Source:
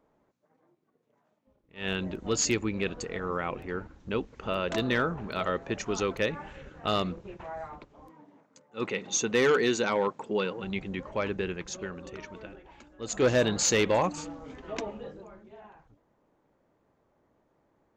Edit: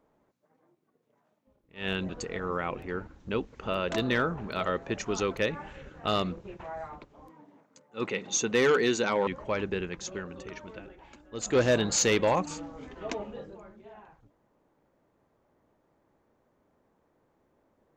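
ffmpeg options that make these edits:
-filter_complex "[0:a]asplit=3[a][b][c];[a]atrim=end=2.092[d];[b]atrim=start=2.888:end=10.072[e];[c]atrim=start=10.938[f];[d][e]acrossfade=d=0.004:c1=hsin:c2=hsin[g];[g][f]acrossfade=d=0.004:c1=hsin:c2=hsin"

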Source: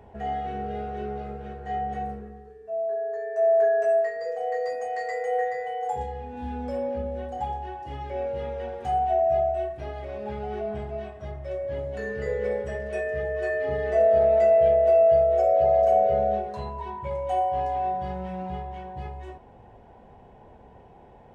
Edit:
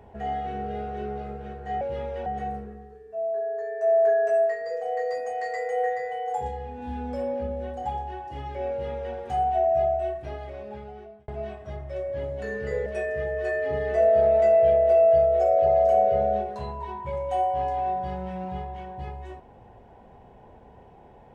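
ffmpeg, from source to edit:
-filter_complex "[0:a]asplit=5[a][b][c][d][e];[a]atrim=end=1.812[f];[b]atrim=start=8.248:end=8.702[g];[c]atrim=start=1.808:end=10.83,asetpts=PTS-STARTPTS,afade=t=out:st=8.012:d=1.01[h];[d]atrim=start=10.83:end=12.412,asetpts=PTS-STARTPTS,afade=t=in:d=0.004:c=hsin[i];[e]atrim=start=12.838[j];[f][g]acrossfade=d=0.004:c1=hsin:c2=hsin[k];[h][i]concat=n=2:v=0:a=1[l];[k][l]acrossfade=d=0.004:c1=hsin:c2=hsin[m];[m][j]acrossfade=d=0.004:c1=hsin:c2=hsin"

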